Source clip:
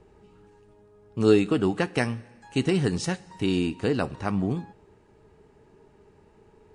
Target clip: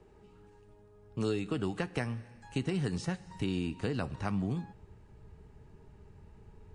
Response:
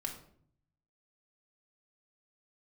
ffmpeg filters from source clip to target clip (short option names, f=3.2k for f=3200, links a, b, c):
-filter_complex "[0:a]asubboost=boost=5:cutoff=150,acrossover=split=180|2100[a][b][c];[a]acompressor=threshold=-37dB:ratio=4[d];[b]acompressor=threshold=-28dB:ratio=4[e];[c]acompressor=threshold=-42dB:ratio=4[f];[d][e][f]amix=inputs=3:normalize=0,volume=-3.5dB"